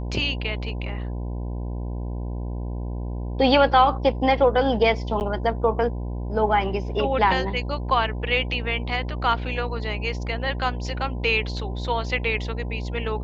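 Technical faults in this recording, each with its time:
buzz 60 Hz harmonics 17 -29 dBFS
5.20–5.21 s: dropout 9.5 ms

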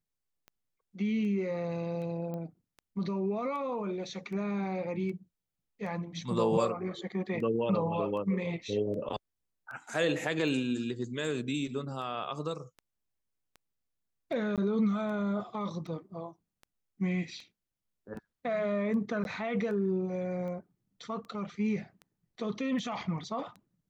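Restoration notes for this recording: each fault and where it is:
tick 78 rpm -34 dBFS
2.34 s: pop -28 dBFS
14.56–14.58 s: dropout 17 ms
19.24–19.25 s: dropout 11 ms

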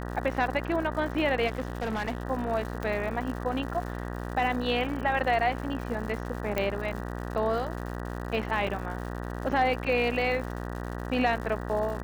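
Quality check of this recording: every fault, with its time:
buzz 60 Hz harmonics 32 -35 dBFS
crackle 190 per s -37 dBFS
1.47–2.23 s: clipped -26.5 dBFS
2.83 s: pop -20 dBFS
6.58 s: pop -14 dBFS
8.67 s: dropout 3.7 ms

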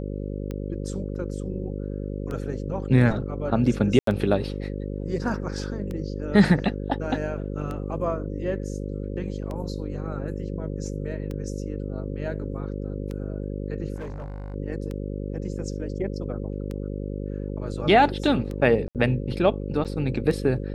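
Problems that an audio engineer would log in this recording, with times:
buzz 50 Hz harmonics 11 -31 dBFS
tick 33 1/3 rpm -21 dBFS
3.99–4.07 s: dropout 83 ms
13.96–14.54 s: clipped -30.5 dBFS
18.88–18.95 s: dropout 68 ms
19.84–19.85 s: dropout 8.2 ms

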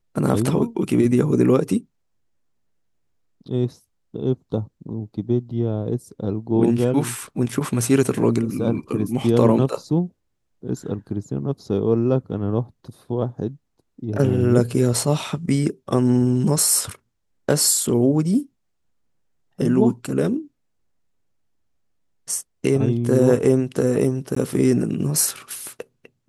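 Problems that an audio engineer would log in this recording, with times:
24.35–24.36 s: dropout 14 ms

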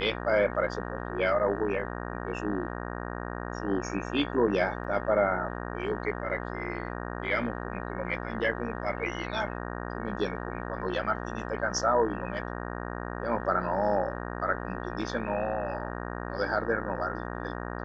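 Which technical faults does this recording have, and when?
buzz 60 Hz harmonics 31 -36 dBFS
4.84 s: dropout 4.8 ms

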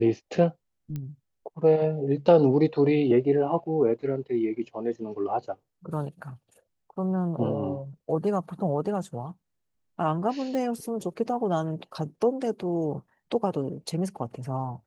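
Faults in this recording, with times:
0.96 s: pop -22 dBFS
10.55 s: pop -20 dBFS

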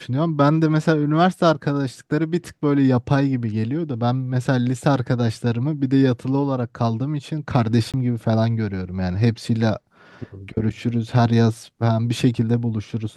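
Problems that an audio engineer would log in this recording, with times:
7.92–7.94 s: dropout 17 ms

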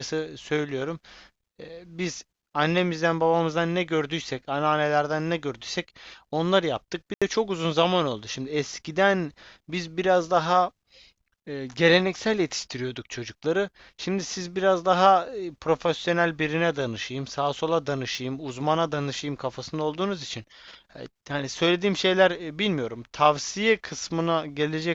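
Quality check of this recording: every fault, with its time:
7.14–7.22 s: dropout 76 ms
18.15 s: pop -21 dBFS

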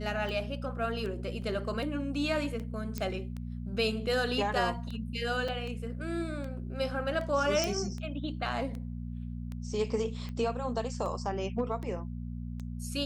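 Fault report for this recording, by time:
hum 60 Hz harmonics 4 -38 dBFS
tick 78 rpm
1.42 s: dropout 2.8 ms
2.98 s: pop -20 dBFS
5.48 s: dropout 4.7 ms
7.64 s: pop

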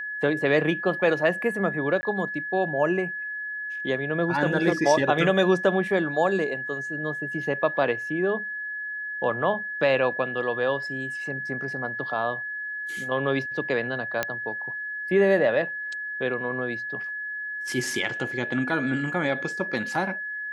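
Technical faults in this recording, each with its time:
whine 1.7 kHz -30 dBFS
2.01–2.03 s: dropout 20 ms
14.23 s: pop -10 dBFS

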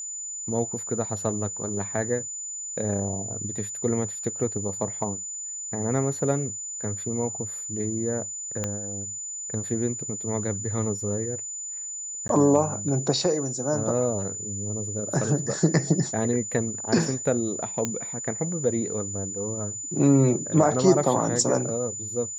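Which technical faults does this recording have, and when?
whine 7 kHz -32 dBFS
8.64 s: pop -13 dBFS
12.28–12.29 s: dropout 12 ms
17.85 s: pop -11 dBFS

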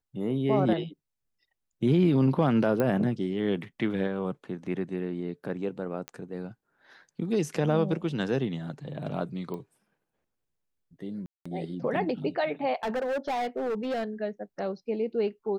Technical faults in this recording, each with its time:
2.80 s: pop -15 dBFS
6.08 s: pop -20 dBFS
9.54 s: pop -26 dBFS
11.26–11.46 s: dropout 195 ms
12.83–14.04 s: clipped -26.5 dBFS

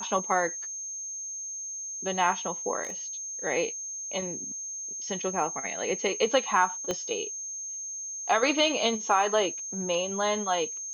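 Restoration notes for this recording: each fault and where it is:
whine 6.4 kHz -34 dBFS
2.83–2.92 s: clipped -30 dBFS
6.91 s: pop -15 dBFS

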